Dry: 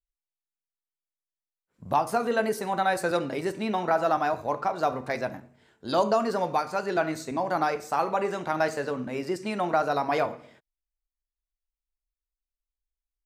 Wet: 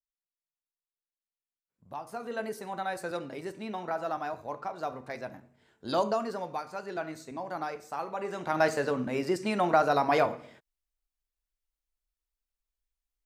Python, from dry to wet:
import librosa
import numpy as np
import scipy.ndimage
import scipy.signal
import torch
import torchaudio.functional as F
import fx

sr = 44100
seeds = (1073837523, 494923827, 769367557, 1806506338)

y = fx.gain(x, sr, db=fx.line((1.9, -17.0), (2.41, -9.0), (5.22, -9.0), (5.88, -2.5), (6.46, -9.5), (8.14, -9.5), (8.65, 1.0)))